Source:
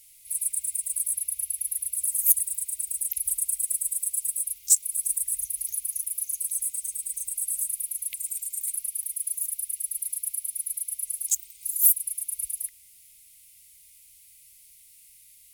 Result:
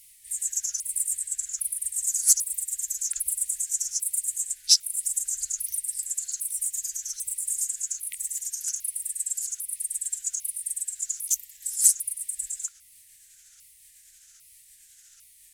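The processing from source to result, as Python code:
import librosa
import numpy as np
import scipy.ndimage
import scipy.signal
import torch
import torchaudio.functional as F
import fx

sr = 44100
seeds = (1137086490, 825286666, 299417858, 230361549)

y = fx.pitch_ramps(x, sr, semitones=-7.5, every_ms=800)
y = F.gain(torch.from_numpy(y), 1.0).numpy()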